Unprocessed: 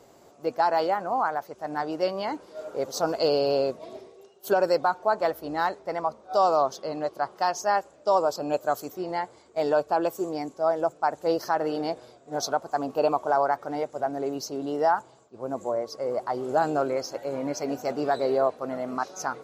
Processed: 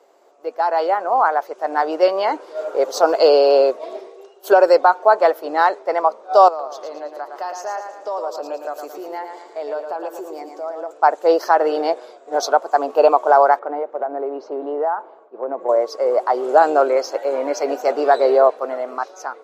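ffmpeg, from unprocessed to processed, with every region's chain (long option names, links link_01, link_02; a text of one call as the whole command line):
ffmpeg -i in.wav -filter_complex "[0:a]asettb=1/sr,asplit=3[link_01][link_02][link_03];[link_01]atrim=end=6.484[link_04];[link_02]atrim=start=6.48:end=10.91,asetpts=PTS-STARTPTS,afade=type=in:duration=0.004:curve=qsin,afade=type=out:start_time=4.426:duration=0.004:curve=qsin,acompressor=threshold=-43dB:ratio=2.5:attack=3.2:release=140:knee=1:detection=peak,aecho=1:1:112|224|336|448|560:0.473|0.208|0.0916|0.0403|0.0177,atrim=end_sample=195363[link_05];[link_03]atrim=start=10.906[link_06];[link_04][link_05]acrossfade=duration=0.004:curve1=hsin:curve2=qsin[link_07];[link_07][link_06]acrossfade=duration=0.004:curve1=qsin:curve2=hsin,asettb=1/sr,asplit=3[link_08][link_09][link_10];[link_08]atrim=end=13.594[link_11];[link_09]atrim=start=13.59:end=15.69,asetpts=PTS-STARTPTS,afade=type=in:duration=0.004:curve=qsin,afade=type=out:start_time=2.096:duration=0.004:curve=qsin,lowpass=1500,acompressor=threshold=-29dB:ratio=6:attack=3.2:release=140:knee=1:detection=peak[link_12];[link_10]atrim=start=15.686[link_13];[link_11][link_12]acrossfade=duration=0.004:curve1=hsin:curve2=qsin[link_14];[link_14][link_13]acrossfade=duration=0.004:curve1=qsin:curve2=hsin,highpass=frequency=380:width=0.5412,highpass=frequency=380:width=1.3066,highshelf=frequency=3700:gain=-10,dynaudnorm=framelen=210:gausssize=9:maxgain=11.5dB,volume=1.5dB" out.wav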